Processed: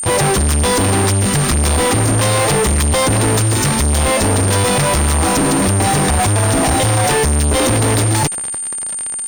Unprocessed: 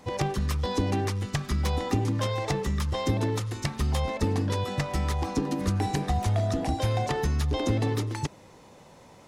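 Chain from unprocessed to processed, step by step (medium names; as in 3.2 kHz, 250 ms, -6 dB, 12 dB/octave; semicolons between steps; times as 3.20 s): fuzz box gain 49 dB, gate -45 dBFS; whistle 9 kHz -20 dBFS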